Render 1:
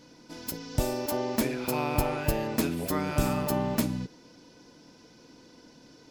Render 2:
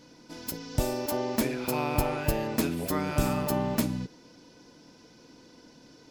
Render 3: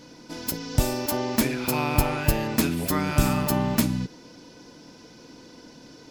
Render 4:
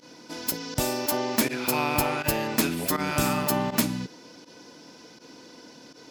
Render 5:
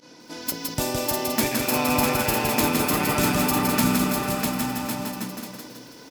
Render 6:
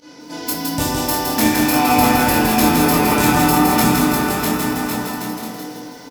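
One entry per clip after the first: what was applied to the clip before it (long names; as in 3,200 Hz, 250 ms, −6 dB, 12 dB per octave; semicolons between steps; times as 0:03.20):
no processing that can be heard
dynamic equaliser 520 Hz, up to −6 dB, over −41 dBFS, Q 0.92; level +6.5 dB
high-pass filter 300 Hz 6 dB per octave; fake sidechain pumping 81 BPM, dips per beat 1, −18 dB, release 63 ms; level +1.5 dB
on a send: bouncing-ball delay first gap 650 ms, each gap 0.7×, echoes 5; on the sum: feedback echo at a low word length 164 ms, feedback 55%, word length 8 bits, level −3.5 dB
double-tracking delay 23 ms −3 dB; convolution reverb RT60 1.9 s, pre-delay 3 ms, DRR −1.5 dB; level +2 dB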